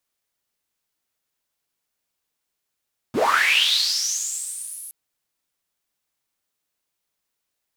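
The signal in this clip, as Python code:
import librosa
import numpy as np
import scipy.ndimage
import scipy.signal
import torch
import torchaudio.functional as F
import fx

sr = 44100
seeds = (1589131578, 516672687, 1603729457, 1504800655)

y = fx.riser_noise(sr, seeds[0], length_s=1.77, colour='white', kind='bandpass', start_hz=120.0, end_hz=11000.0, q=8.4, swell_db=-31.0, law='linear')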